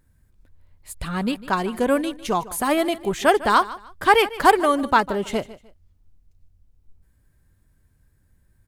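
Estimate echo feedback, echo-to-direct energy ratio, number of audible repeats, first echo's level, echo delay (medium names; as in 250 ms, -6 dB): 27%, -17.0 dB, 2, -17.5 dB, 151 ms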